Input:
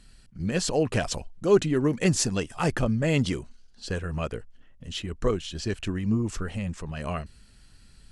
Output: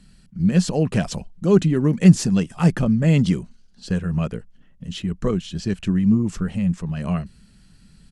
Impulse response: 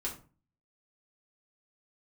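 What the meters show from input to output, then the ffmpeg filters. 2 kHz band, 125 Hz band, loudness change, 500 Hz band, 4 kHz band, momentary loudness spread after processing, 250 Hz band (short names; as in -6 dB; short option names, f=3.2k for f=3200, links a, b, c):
0.0 dB, +9.5 dB, +7.0 dB, +1.5 dB, -0.5 dB, 13 LU, +9.5 dB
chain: -filter_complex "[0:a]equalizer=f=180:w=1.9:g=14.5,acrossover=split=650|4400[a][b][c];[c]asoftclip=type=tanh:threshold=-23.5dB[d];[a][b][d]amix=inputs=3:normalize=0,aresample=32000,aresample=44100"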